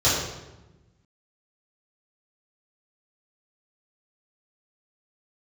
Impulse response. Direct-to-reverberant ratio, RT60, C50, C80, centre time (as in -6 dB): -11.5 dB, 1.1 s, 1.0 dB, 3.5 dB, 68 ms